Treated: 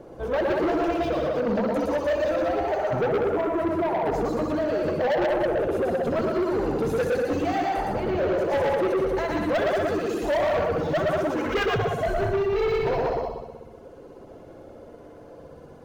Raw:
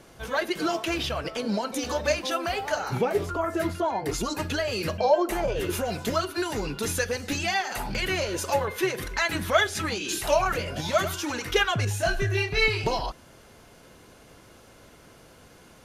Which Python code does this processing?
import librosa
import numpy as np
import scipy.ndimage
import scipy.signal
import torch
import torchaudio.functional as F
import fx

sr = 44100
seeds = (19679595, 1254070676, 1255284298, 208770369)

y = fx.curve_eq(x, sr, hz=(170.0, 500.0, 2300.0, 11000.0), db=(0, 8, -13, -16))
y = fx.rider(y, sr, range_db=10, speed_s=2.0)
y = fx.echo_heads(y, sr, ms=63, heads='all three', feedback_pct=53, wet_db=-6)
y = fx.dereverb_blind(y, sr, rt60_s=0.87)
y = fx.high_shelf(y, sr, hz=4500.0, db=-10.5, at=(7.93, 8.5))
y = fx.spec_box(y, sr, start_s=11.36, length_s=0.29, low_hz=940.0, high_hz=3100.0, gain_db=9)
y = y + 10.0 ** (-3.5 / 20.0) * np.pad(y, (int(113 * sr / 1000.0), 0))[:len(y)]
y = 10.0 ** (-21.0 / 20.0) * np.tanh(y / 10.0 ** (-21.0 / 20.0))
y = np.interp(np.arange(len(y)), np.arange(len(y))[::2], y[::2])
y = F.gain(torch.from_numpy(y), 1.0).numpy()